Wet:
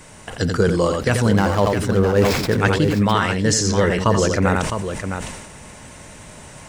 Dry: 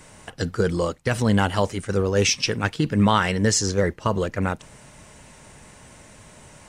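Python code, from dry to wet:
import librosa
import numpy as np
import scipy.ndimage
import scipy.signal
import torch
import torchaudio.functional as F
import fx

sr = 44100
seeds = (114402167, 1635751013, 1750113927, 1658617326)

p1 = fx.median_filter(x, sr, points=15, at=(1.31, 2.53))
p2 = fx.rider(p1, sr, range_db=10, speed_s=0.5)
p3 = p2 + fx.echo_multitap(p2, sr, ms=(86, 659), db=(-9.0, -8.0), dry=0)
p4 = fx.sustainer(p3, sr, db_per_s=45.0)
y = F.gain(torch.from_numpy(p4), 3.0).numpy()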